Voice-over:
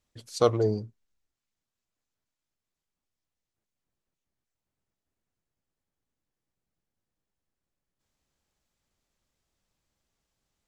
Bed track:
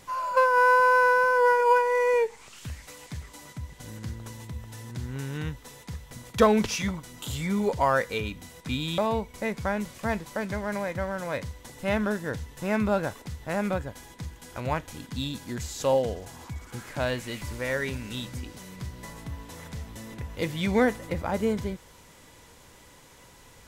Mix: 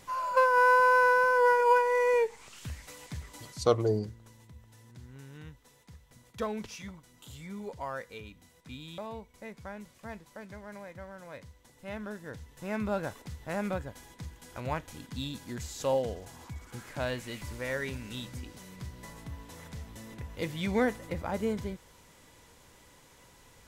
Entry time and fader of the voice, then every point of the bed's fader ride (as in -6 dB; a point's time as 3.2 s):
3.25 s, -2.5 dB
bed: 3.44 s -2.5 dB
3.87 s -14.5 dB
11.81 s -14.5 dB
13.14 s -5 dB